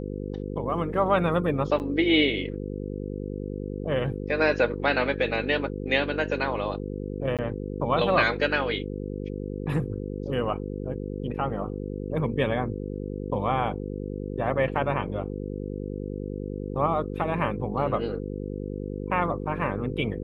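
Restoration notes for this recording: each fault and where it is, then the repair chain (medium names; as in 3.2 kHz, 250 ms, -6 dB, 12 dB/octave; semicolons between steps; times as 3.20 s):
buzz 50 Hz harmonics 10 -33 dBFS
1.79–1.80 s: dropout 9 ms
7.37–7.39 s: dropout 17 ms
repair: de-hum 50 Hz, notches 10; interpolate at 1.79 s, 9 ms; interpolate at 7.37 s, 17 ms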